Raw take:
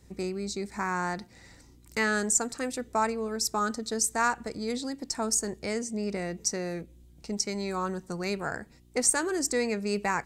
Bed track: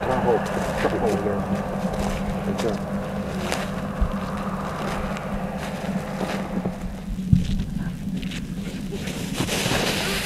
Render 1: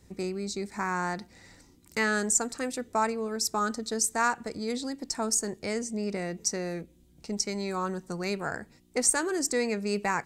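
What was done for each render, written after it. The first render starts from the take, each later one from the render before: de-hum 60 Hz, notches 2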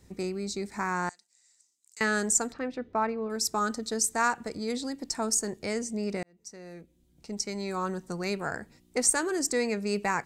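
1.09–2.01 s: band-pass filter 7.5 kHz, Q 3; 2.52–3.30 s: distance through air 300 m; 6.23–7.87 s: fade in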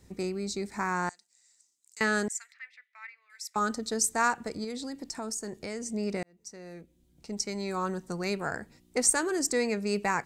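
2.28–3.56 s: ladder high-pass 1.9 kHz, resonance 75%; 4.64–5.86 s: compression 3:1, threshold -34 dBFS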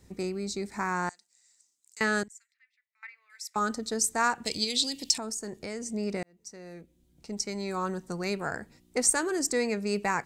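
2.23–3.03 s: amplifier tone stack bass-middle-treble 6-0-2; 4.45–5.18 s: resonant high shelf 2.1 kHz +13 dB, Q 3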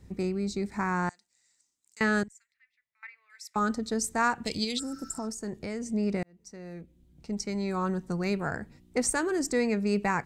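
4.81–5.24 s: spectral replace 1.3–7 kHz after; tone controls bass +7 dB, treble -6 dB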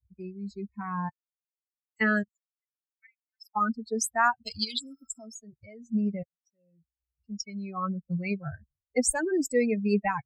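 expander on every frequency bin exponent 3; level rider gain up to 6 dB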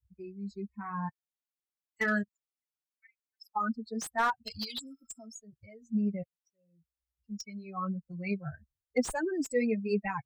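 flange 0.89 Hz, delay 0.3 ms, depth 5.5 ms, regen -32%; slew-rate limiter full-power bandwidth 95 Hz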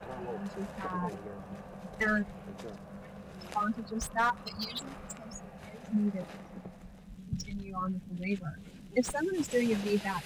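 add bed track -19.5 dB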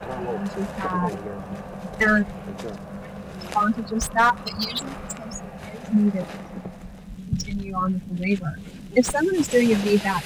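trim +10.5 dB

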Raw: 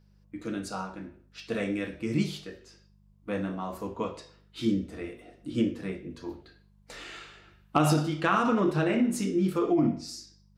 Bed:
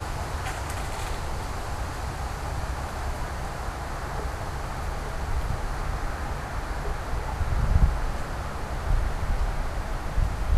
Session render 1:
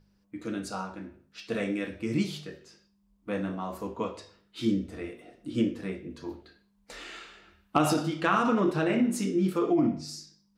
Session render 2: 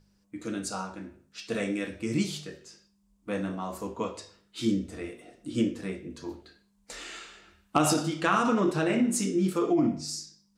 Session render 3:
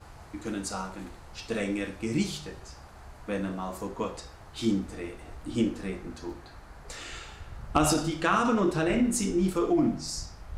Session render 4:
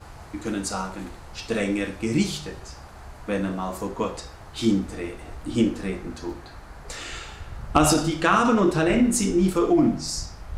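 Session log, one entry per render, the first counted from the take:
de-hum 50 Hz, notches 3
peaking EQ 7.7 kHz +9 dB 1.1 oct
add bed -17 dB
trim +5.5 dB

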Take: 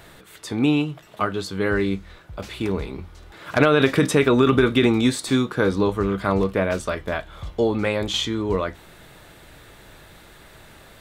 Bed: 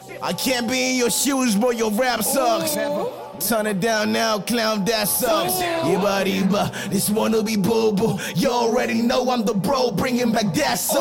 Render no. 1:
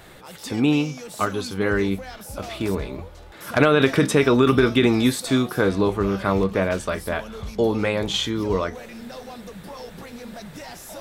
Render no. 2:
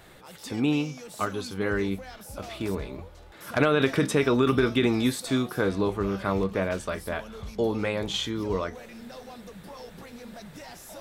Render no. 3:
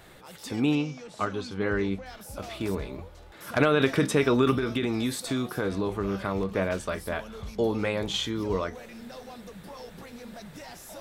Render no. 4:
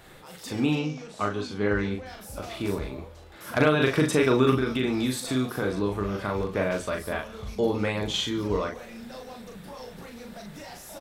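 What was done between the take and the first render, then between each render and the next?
add bed -18.5 dB
trim -5.5 dB
0.75–2.06 s: distance through air 80 m; 4.57–6.50 s: compression, threshold -23 dBFS
doubling 39 ms -4 dB; delay 145 ms -21.5 dB

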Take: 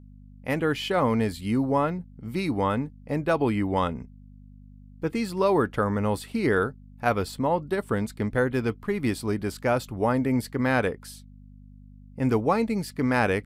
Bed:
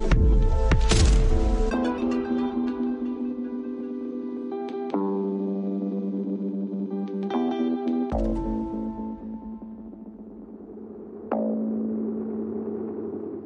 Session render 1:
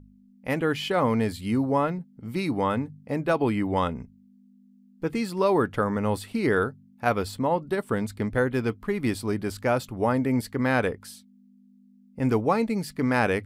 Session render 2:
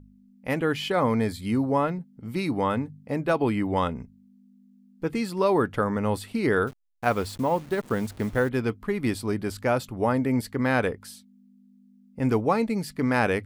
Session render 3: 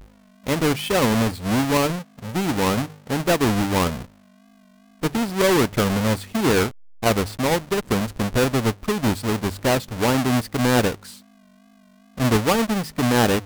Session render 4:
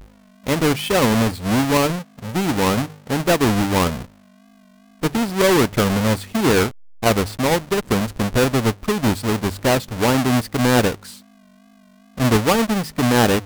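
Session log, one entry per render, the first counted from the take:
de-hum 50 Hz, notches 3
0.92–1.46 s: Butterworth band-stop 2.8 kHz, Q 6.1; 6.67–8.49 s: send-on-delta sampling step -42 dBFS
square wave that keeps the level; vibrato 2.5 Hz 70 cents
trim +2.5 dB

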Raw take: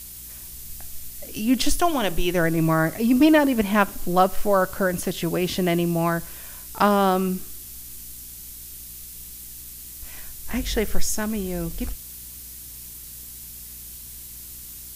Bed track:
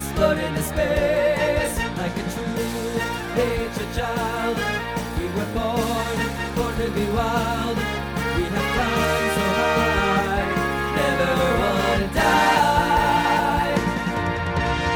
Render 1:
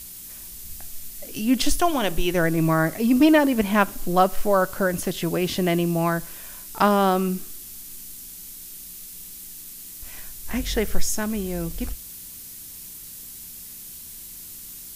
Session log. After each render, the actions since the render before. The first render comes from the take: de-hum 60 Hz, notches 2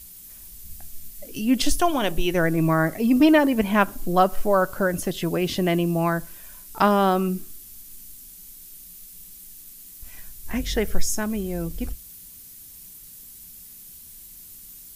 noise reduction 7 dB, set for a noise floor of -40 dBFS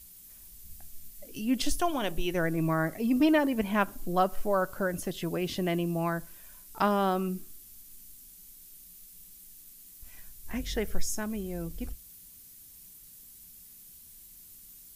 trim -7.5 dB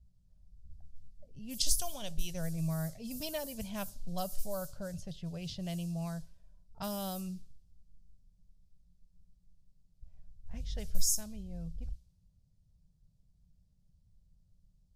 level-controlled noise filter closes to 620 Hz, open at -22.5 dBFS; FFT filter 150 Hz 0 dB, 320 Hz -25 dB, 580 Hz -10 dB, 1.1 kHz -19 dB, 2 kHz -18 dB, 4.8 kHz +5 dB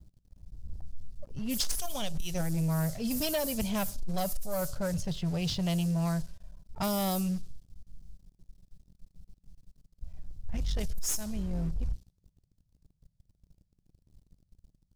compression 4:1, threshold -34 dBFS, peak gain reduction 13.5 dB; waveshaping leveller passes 3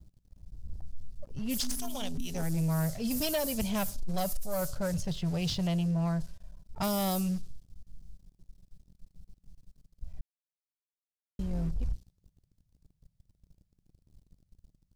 1.60–2.43 s: AM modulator 250 Hz, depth 45%; 5.66–6.20 s: low-pass 2.8 kHz -> 1.7 kHz 6 dB/octave; 10.21–11.39 s: mute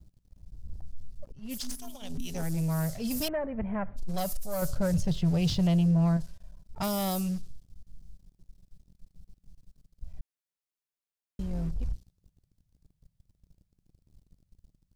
1.32–2.10 s: expander -27 dBFS; 3.28–3.97 s: elliptic low-pass 2 kHz, stop band 70 dB; 4.62–6.17 s: bass shelf 500 Hz +6.5 dB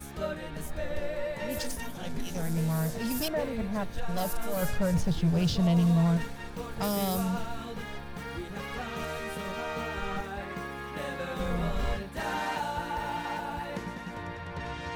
add bed track -15 dB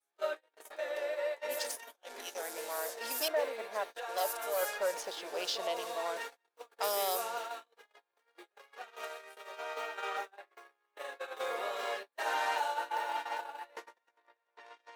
gate -33 dBFS, range -40 dB; inverse Chebyshev high-pass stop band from 170 Hz, stop band 50 dB

